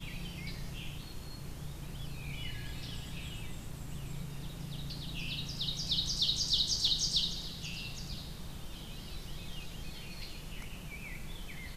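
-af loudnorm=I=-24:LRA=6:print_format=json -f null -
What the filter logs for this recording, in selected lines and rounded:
"input_i" : "-37.5",
"input_tp" : "-16.7",
"input_lra" : "12.9",
"input_thresh" : "-47.5",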